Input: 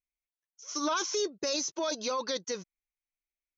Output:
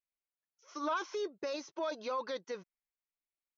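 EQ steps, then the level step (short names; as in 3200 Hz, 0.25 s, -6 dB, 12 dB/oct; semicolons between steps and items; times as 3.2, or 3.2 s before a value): LPF 3500 Hz 12 dB/oct; low shelf 350 Hz -11.5 dB; high shelf 2600 Hz -11 dB; 0.0 dB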